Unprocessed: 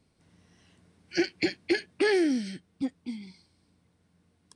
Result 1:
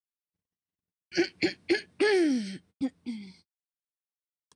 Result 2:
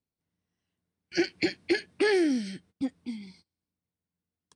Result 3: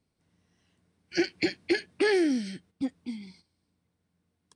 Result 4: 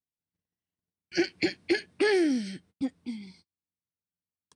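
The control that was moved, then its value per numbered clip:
gate, range: -60 dB, -23 dB, -9 dB, -35 dB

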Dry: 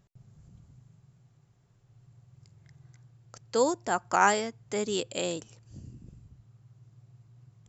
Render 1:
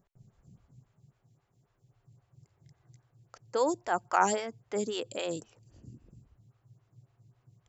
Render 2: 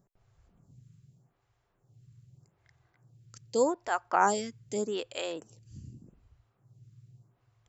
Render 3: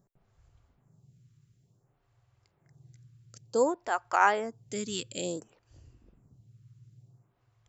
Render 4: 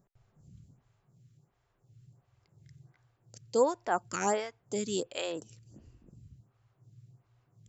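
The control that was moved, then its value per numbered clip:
lamp-driven phase shifter, rate: 3.7 Hz, 0.83 Hz, 0.56 Hz, 1.4 Hz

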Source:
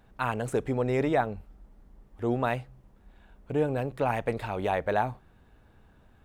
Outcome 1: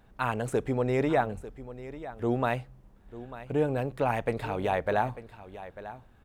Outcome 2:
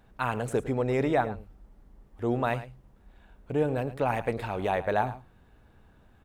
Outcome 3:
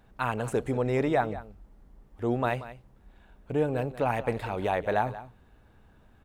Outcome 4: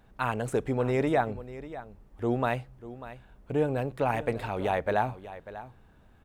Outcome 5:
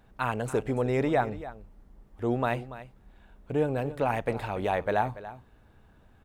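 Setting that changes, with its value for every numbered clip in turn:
delay, time: 895 ms, 107 ms, 183 ms, 593 ms, 286 ms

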